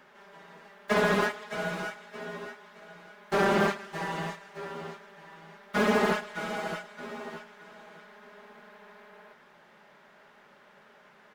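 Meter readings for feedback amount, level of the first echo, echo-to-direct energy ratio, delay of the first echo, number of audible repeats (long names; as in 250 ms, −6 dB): repeats not evenly spaced, −21.0 dB, −21.0 dB, 108 ms, 1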